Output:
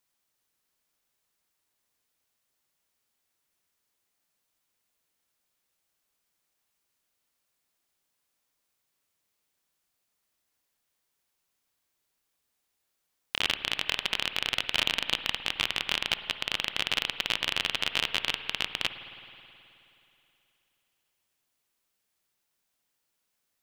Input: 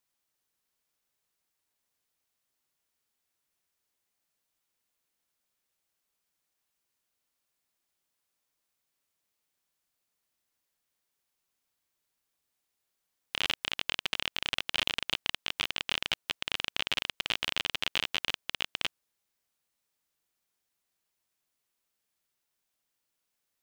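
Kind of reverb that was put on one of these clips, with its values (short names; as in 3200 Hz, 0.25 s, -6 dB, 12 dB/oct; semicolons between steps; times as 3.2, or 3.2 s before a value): spring tank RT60 3 s, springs 53 ms, chirp 55 ms, DRR 10 dB; gain +3 dB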